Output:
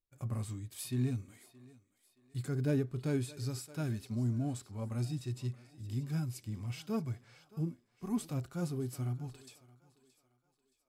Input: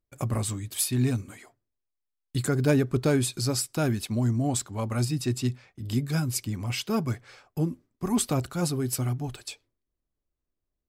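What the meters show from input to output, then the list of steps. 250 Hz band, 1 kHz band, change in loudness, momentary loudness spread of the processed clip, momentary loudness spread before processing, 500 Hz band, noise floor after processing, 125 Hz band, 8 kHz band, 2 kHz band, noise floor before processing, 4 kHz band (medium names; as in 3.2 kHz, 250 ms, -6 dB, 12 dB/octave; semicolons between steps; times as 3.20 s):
-9.5 dB, -14.0 dB, -10.0 dB, 12 LU, 10 LU, -11.5 dB, -78 dBFS, -8.0 dB, -17.5 dB, -14.0 dB, -84 dBFS, -16.0 dB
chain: thinning echo 622 ms, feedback 40%, high-pass 260 Hz, level -19.5 dB; harmonic-percussive split percussive -12 dB; trim -7.5 dB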